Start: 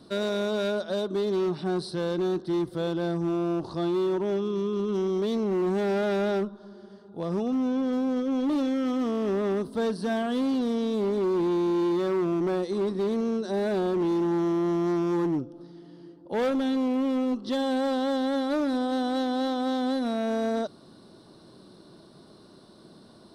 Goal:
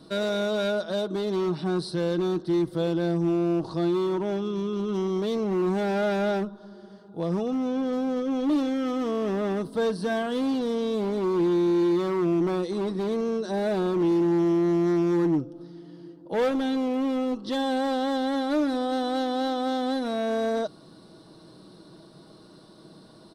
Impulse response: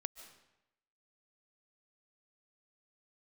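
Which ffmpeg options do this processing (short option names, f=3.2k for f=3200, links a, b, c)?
-af "aecho=1:1:6.3:0.38,volume=1dB"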